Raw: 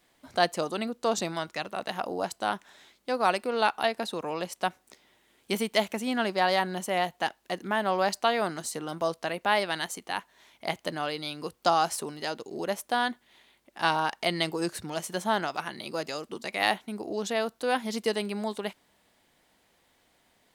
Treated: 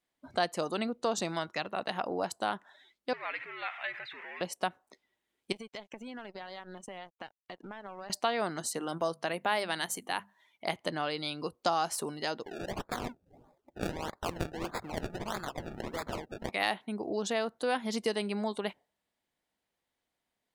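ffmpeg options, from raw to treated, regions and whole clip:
-filter_complex "[0:a]asettb=1/sr,asplit=3[a][b][c];[a]atrim=end=3.134[d];[b]atrim=start=3.13:end=4.41,asetpts=PTS-STARTPTS,afade=t=in:d=0.004:c=qsin,afade=t=out:st=1.276:d=0.004:c=qsin,aeval=exprs='val(0)+0.5*0.0447*sgn(val(0))':c=same,bandpass=f=2.1k:t=q:w=4.4,afreqshift=-85[e];[c]atrim=start=4.406[f];[d][e]acrossfade=d=0.004:c1=hsin:c2=qsin[g];[g][f]acrossfade=d=0.004:c1=qsin:c2=hsin,asettb=1/sr,asplit=3[h][i][j];[h]atrim=end=5.524[k];[i]atrim=start=5.52:end=8.1,asetpts=PTS-STARTPTS,afade=t=in:d=0.004:c=qsin,afade=t=out:st=2.576:d=0.004:c=qsin,lowpass=9.2k,acompressor=threshold=-38dB:ratio=6:attack=3.2:release=140:knee=1:detection=peak,aeval=exprs='sgn(val(0))*max(abs(val(0))-0.00376,0)':c=same[l];[j]atrim=start=8.096[m];[k][l]acrossfade=d=0.004:c1=hsin:c2=qsin[n];[n][m]acrossfade=d=0.004:c1=qsin:c2=hsin,asettb=1/sr,asplit=3[o][p][q];[o]atrim=end=8.734[r];[p]atrim=start=8.73:end=10.74,asetpts=PTS-STARTPTS,afade=t=in:d=0.004:c=qsin,afade=t=out:st=2.006:d=0.004:c=qsin,bandreject=f=50:t=h:w=6,bandreject=f=100:t=h:w=6,bandreject=f=150:t=h:w=6,bandreject=f=200:t=h:w=6,bandreject=f=250:t=h:w=6,adynamicequalizer=threshold=0.00316:dfrequency=8000:dqfactor=0.7:tfrequency=8000:tqfactor=0.7:attack=5:release=100:ratio=0.375:range=2.5:mode=boostabove:tftype=highshelf[s];[q]atrim=start=10.736[t];[r][s]acrossfade=d=0.004:c1=hsin:c2=qsin[u];[u][t]acrossfade=d=0.004:c1=qsin:c2=hsin,asettb=1/sr,asplit=3[v][w][x];[v]atrim=end=12.434[y];[w]atrim=start=12.43:end=16.52,asetpts=PTS-STARTPTS,afade=t=in:d=0.004:c=qsin,afade=t=out:st=4.086:d=0.004:c=qsin,highshelf=f=4.4k:g=10.5,acrossover=split=390|2500|6100[z][aa][ab][ac];[z]acompressor=threshold=-48dB:ratio=3[ad];[aa]acompressor=threshold=-42dB:ratio=3[ae];[ab]acompressor=threshold=-36dB:ratio=3[af];[ac]acompressor=threshold=-39dB:ratio=3[ag];[ad][ae][af][ag]amix=inputs=4:normalize=0,acrusher=samples=29:mix=1:aa=0.000001:lfo=1:lforange=29:lforate=1.6[ah];[x]atrim=start=16.516[ai];[y][ah]acrossfade=d=0.004:c1=hsin:c2=qsin[aj];[aj][ai]acrossfade=d=0.004:c1=qsin:c2=hsin,afftdn=nr=19:nf=-52,acompressor=threshold=-29dB:ratio=2"

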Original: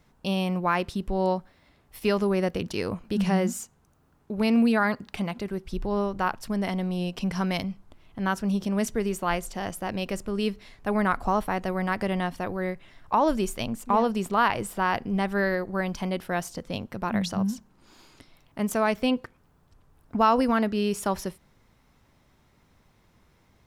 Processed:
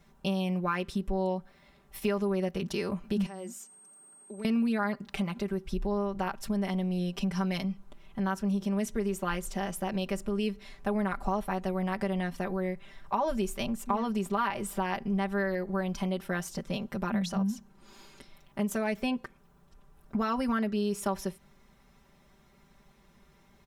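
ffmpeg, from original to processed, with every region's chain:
-filter_complex "[0:a]asettb=1/sr,asplit=3[a][b][c];[a]atrim=end=3.264[d];[b]atrim=start=3.26:end=4.45,asetpts=PTS-STARTPTS,afade=t=in:d=0.004:c=qsin,afade=t=out:st=1.186:d=0.004:c=qsin,highpass=f=230:w=0.5412,highpass=f=230:w=1.3066,acompressor=threshold=-51dB:ratio=2:attack=3.2:release=140:knee=1:detection=peak,aeval=exprs='val(0)+0.00282*sin(2*PI*8400*n/s)':c=same[e];[c]atrim=start=4.446[f];[d][e]acrossfade=d=0.004:c1=hsin:c2=qsin[g];[g][f]acrossfade=d=0.004:c1=qsin:c2=hsin,bandreject=f=4.6k:w=18,aecho=1:1:5.1:0.88,acompressor=threshold=-28dB:ratio=2.5,volume=-1.5dB"

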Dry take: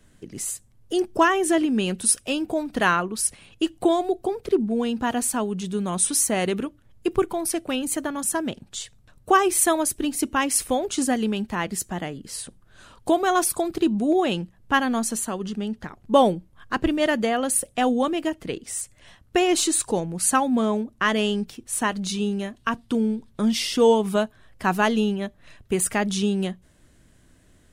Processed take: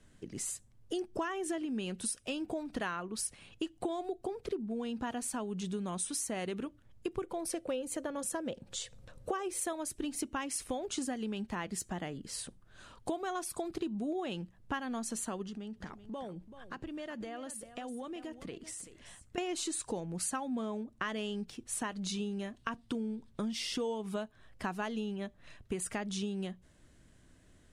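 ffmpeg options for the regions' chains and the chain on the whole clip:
-filter_complex "[0:a]asettb=1/sr,asplit=3[a][b][c];[a]atrim=end=7.234[d];[b]atrim=start=7.23:end=9.73,asetpts=PTS-STARTPTS,afade=t=in:d=0.004:c=qsin,afade=t=out:st=2.496:d=0.004:c=qsin,equalizer=f=520:w=5.1:g=15,acompressor=mode=upward:threshold=-38dB:ratio=2.5:attack=3.2:release=140:knee=2.83:detection=peak[e];[c]atrim=start=9.726[f];[d][e]acrossfade=d=0.004:c1=hsin:c2=qsin[g];[g][f]acrossfade=d=0.004:c1=qsin:c2=hsin,asettb=1/sr,asplit=3[h][i][j];[h]atrim=end=15.424[k];[i]atrim=start=15.42:end=19.38,asetpts=PTS-STARTPTS,afade=t=in:d=0.004:c=qsin,afade=t=out:st=3.956:d=0.004:c=qsin,acompressor=threshold=-33dB:ratio=10:attack=3.2:release=140:knee=1:detection=peak,aecho=1:1:383:0.237,atrim=end_sample=174636[l];[j]atrim=start=19.376[m];[k][l]acrossfade=d=0.004:c1=hsin:c2=qsin[n];[n][m]acrossfade=d=0.004:c1=qsin:c2=hsin,lowpass=9.9k,acompressor=threshold=-28dB:ratio=6,volume=-5.5dB"

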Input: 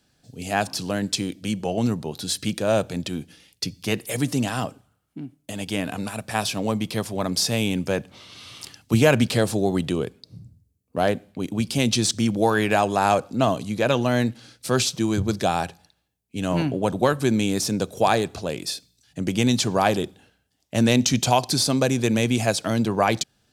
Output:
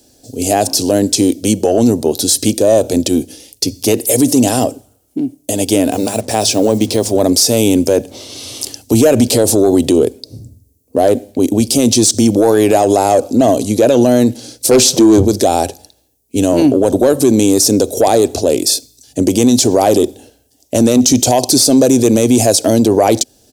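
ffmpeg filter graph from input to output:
-filter_complex "[0:a]asettb=1/sr,asplit=3[a][b][c];[a]atrim=end=5.914[d];[b]atrim=start=5.91:end=7.11,asetpts=PTS-STARTPTS,afade=t=in:d=0.004:c=qsin,afade=t=out:st=1.196:d=0.004:c=qsin,lowpass=7.8k,bandreject=f=50:t=h:w=6,bandreject=f=100:t=h:w=6,bandreject=f=150:t=h:w=6,bandreject=f=200:t=h:w=6,bandreject=f=250:t=h:w=6,acrusher=bits=7:mix=0:aa=0.5[e];[c]atrim=start=7.106[f];[d][e]acrossfade=d=0.004:c1=hsin:c2=qsin[g];[g][f]acrossfade=d=0.004:c1=qsin:c2=hsin,asettb=1/sr,asplit=3[h][i][j];[h]atrim=end=14.714[k];[i]atrim=start=14.71:end=15.25,asetpts=PTS-STARTPTS,afade=t=in:d=0.004:c=qsin,afade=t=out:st=0.536:d=0.004:c=qsin,highpass=f=210:p=1,highshelf=f=3.5k:g=-10.5,aeval=exprs='0.335*sin(PI/2*2.51*val(0)/0.335)':c=same[l];[j]atrim=start=15.246[m];[k][l]acrossfade=d=0.004:c1=hsin:c2=qsin[n];[n][m]acrossfade=d=0.004:c1=qsin:c2=hsin,firequalizer=gain_entry='entry(100,0);entry(170,-11);entry(250,6);entry(390,7);entry(590,6);entry(1200,-11);entry(5800,7);entry(8500,8);entry(14000,10)':delay=0.05:min_phase=1,acontrast=32,alimiter=level_in=8.5dB:limit=-1dB:release=50:level=0:latency=1,volume=-1dB"

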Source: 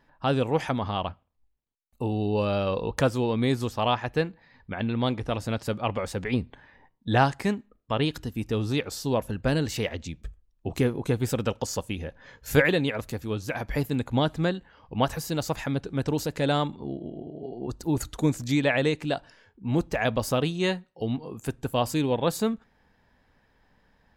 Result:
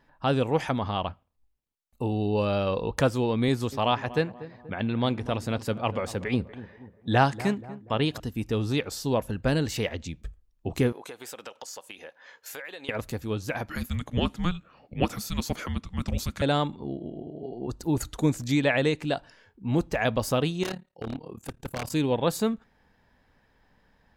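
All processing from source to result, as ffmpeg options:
-filter_complex "[0:a]asettb=1/sr,asplit=3[a][b][c];[a]atrim=end=3.484[d];[b]atrim=start=3.48:end=8.2,asetpts=PTS-STARTPTS,afade=t=in:d=0.004:c=qsin,afade=t=out:st=4.716:d=0.004:c=qsin,highpass=62,asplit=2[e][f];[f]adelay=240,lowpass=f=1.1k:p=1,volume=-15dB,asplit=2[g][h];[h]adelay=240,lowpass=f=1.1k:p=1,volume=0.52,asplit=2[i][j];[j]adelay=240,lowpass=f=1.1k:p=1,volume=0.52,asplit=2[k][l];[l]adelay=240,lowpass=f=1.1k:p=1,volume=0.52,asplit=2[m][n];[n]adelay=240,lowpass=f=1.1k:p=1,volume=0.52[o];[e][g][i][k][m][o]amix=inputs=6:normalize=0,atrim=end_sample=208152[p];[c]atrim=start=8.196[q];[d][p]acrossfade=d=0.004:c1=hsin:c2=qsin[r];[r][q]acrossfade=d=0.004:c1=qsin:c2=hsin,asettb=1/sr,asplit=3[s][t][u];[s]atrim=end=10.924[v];[t]atrim=start=10.92:end=12.89,asetpts=PTS-STARTPTS,afade=t=in:d=0.004:c=qsin,afade=t=out:st=1.966:d=0.004:c=qsin,highpass=620,acompressor=threshold=-37dB:ratio=5:attack=3.2:release=140:knee=1:detection=peak[w];[u]atrim=start=12.886[x];[v][w]acrossfade=d=0.004:c1=hsin:c2=qsin[y];[y][x]acrossfade=d=0.004:c1=qsin:c2=hsin,asettb=1/sr,asplit=3[z][aa][ab];[z]atrim=end=13.694[ac];[aa]atrim=start=13.69:end=16.42,asetpts=PTS-STARTPTS,afade=t=in:d=0.004:c=qsin,afade=t=out:st=2.726:d=0.004:c=qsin,highpass=f=210:p=1,afreqshift=-360[ad];[ab]atrim=start=16.416[ae];[ac][ad]acrossfade=d=0.004:c1=hsin:c2=qsin[af];[af][ae]acrossfade=d=0.004:c1=qsin:c2=hsin,asettb=1/sr,asplit=3[ag][ah][ai];[ag]atrim=end=20.634[aj];[ah]atrim=start=20.63:end=21.92,asetpts=PTS-STARTPTS,afade=t=in:d=0.004:c=qsin,afade=t=out:st=1.286:d=0.004:c=qsin,tremolo=f=36:d=0.889,aeval=exprs='0.0531*(abs(mod(val(0)/0.0531+3,4)-2)-1)':c=same[ak];[ai]atrim=start=21.916[al];[aj][ak]acrossfade=d=0.004:c1=hsin:c2=qsin[am];[am][al]acrossfade=d=0.004:c1=qsin:c2=hsin"

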